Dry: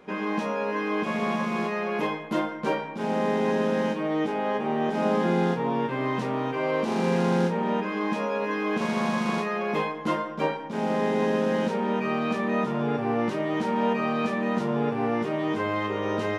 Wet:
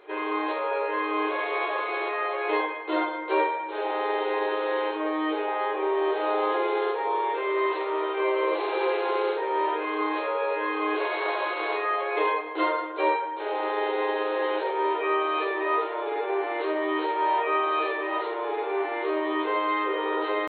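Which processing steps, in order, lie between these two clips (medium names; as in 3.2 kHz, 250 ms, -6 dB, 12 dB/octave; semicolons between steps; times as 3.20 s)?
tempo 0.8×; brick-wall FIR band-pass 310–4300 Hz; reverberation RT60 0.45 s, pre-delay 3 ms, DRR 1.5 dB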